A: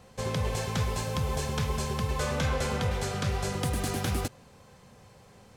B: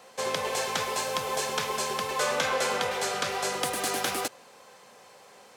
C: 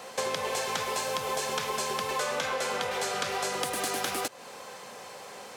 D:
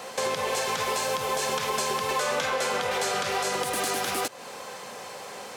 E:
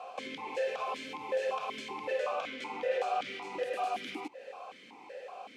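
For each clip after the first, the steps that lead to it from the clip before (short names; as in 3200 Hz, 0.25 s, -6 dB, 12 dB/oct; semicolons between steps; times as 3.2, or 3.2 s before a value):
HPF 470 Hz 12 dB/oct; gain +6 dB
compressor 6:1, threshold -37 dBFS, peak gain reduction 14 dB; gain +8.5 dB
limiter -21.5 dBFS, peak gain reduction 7.5 dB; gain +4.5 dB
vowel sequencer 5.3 Hz; gain +3 dB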